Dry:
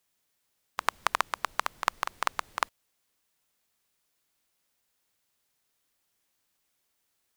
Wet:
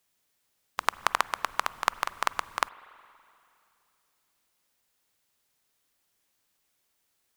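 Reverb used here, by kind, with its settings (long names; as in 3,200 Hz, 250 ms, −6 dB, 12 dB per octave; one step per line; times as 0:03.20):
spring reverb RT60 2.7 s, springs 40/47/51 ms, chirp 50 ms, DRR 18 dB
level +1.5 dB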